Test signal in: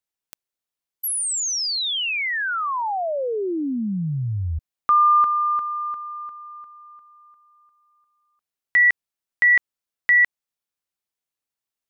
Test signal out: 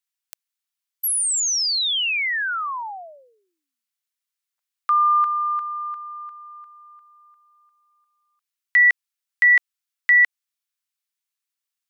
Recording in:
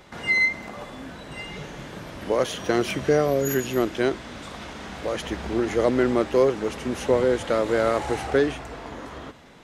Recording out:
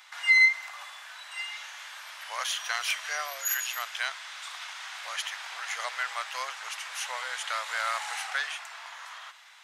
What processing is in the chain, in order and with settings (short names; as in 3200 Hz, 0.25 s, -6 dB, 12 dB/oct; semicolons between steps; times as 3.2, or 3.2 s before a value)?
Bessel high-pass 1500 Hz, order 8; gain +3 dB